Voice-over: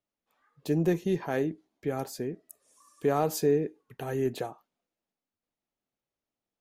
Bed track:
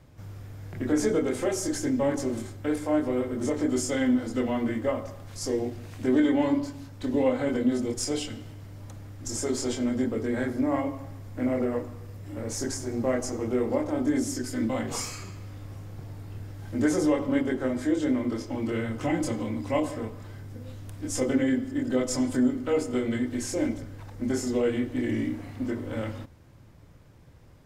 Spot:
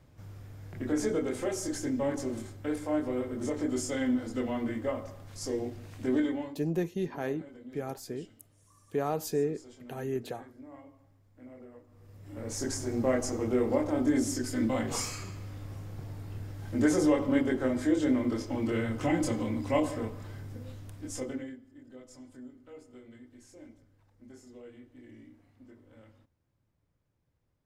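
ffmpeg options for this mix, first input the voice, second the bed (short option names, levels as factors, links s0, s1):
-filter_complex "[0:a]adelay=5900,volume=0.596[s0];[1:a]volume=7.08,afade=t=out:st=6.16:d=0.39:silence=0.125893,afade=t=in:st=11.87:d=0.96:silence=0.0794328,afade=t=out:st=20.46:d=1.12:silence=0.0707946[s1];[s0][s1]amix=inputs=2:normalize=0"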